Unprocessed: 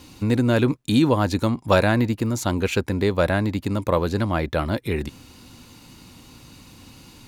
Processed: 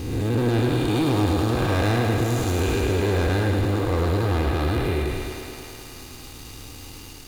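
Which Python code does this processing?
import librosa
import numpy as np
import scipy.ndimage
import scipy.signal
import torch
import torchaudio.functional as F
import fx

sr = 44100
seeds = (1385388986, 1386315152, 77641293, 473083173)

y = fx.spec_blur(x, sr, span_ms=376.0)
y = fx.low_shelf(y, sr, hz=60.0, db=10.5)
y = y + 0.6 * np.pad(y, (int(2.5 * sr / 1000.0), 0))[:len(y)]
y = fx.leveller(y, sr, passes=3)
y = fx.high_shelf(y, sr, hz=11000.0, db=6.5)
y = fx.echo_thinned(y, sr, ms=106, feedback_pct=83, hz=170.0, wet_db=-7.0)
y = y * 10.0 ** (-6.5 / 20.0)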